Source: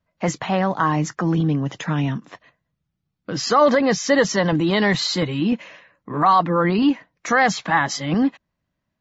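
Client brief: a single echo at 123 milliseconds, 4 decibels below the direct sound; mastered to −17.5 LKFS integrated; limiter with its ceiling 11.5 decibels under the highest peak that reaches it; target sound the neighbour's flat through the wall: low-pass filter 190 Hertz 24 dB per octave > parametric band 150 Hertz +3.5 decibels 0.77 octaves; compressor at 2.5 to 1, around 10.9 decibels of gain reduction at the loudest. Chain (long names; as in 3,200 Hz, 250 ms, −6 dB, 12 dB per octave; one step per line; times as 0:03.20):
downward compressor 2.5 to 1, threshold −28 dBFS
brickwall limiter −25 dBFS
low-pass filter 190 Hz 24 dB per octave
parametric band 150 Hz +3.5 dB 0.77 octaves
single-tap delay 123 ms −4 dB
level +19 dB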